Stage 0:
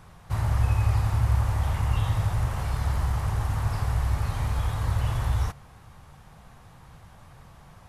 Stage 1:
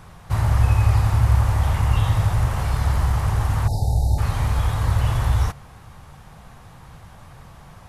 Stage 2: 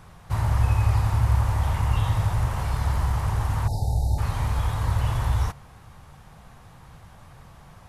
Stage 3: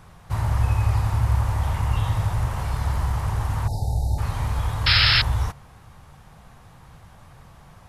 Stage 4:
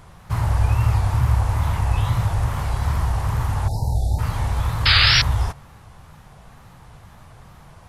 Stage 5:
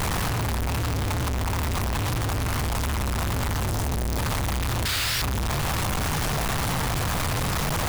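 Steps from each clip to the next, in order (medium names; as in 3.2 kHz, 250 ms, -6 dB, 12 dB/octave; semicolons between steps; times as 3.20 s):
spectral selection erased 3.68–4.18 s, 910–3600 Hz; trim +6 dB
dynamic bell 950 Hz, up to +4 dB, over -45 dBFS, Q 6.6; trim -4 dB
painted sound noise, 4.86–5.22 s, 1.2–5.4 kHz -18 dBFS
wow and flutter 140 cents; trim +2.5 dB
one-bit comparator; trim -4.5 dB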